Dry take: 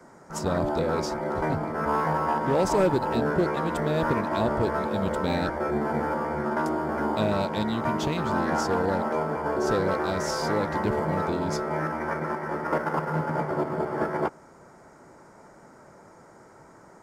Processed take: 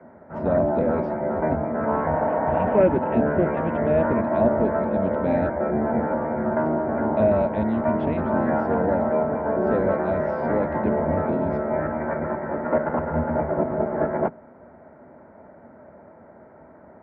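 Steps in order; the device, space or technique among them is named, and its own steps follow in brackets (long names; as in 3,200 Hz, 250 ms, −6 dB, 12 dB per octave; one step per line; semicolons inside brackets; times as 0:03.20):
0:02.54–0:04.06: high shelf with overshoot 3,700 Hz −7 dB, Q 3
0:02.15–0:02.72: healed spectral selection 220–2,300 Hz before
sub-octave bass pedal (sub-octave generator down 1 octave, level −1 dB; loudspeaker in its box 70–2,100 Hz, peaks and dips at 76 Hz +3 dB, 120 Hz −9 dB, 240 Hz +8 dB, 620 Hz +10 dB, 1,200 Hz −5 dB)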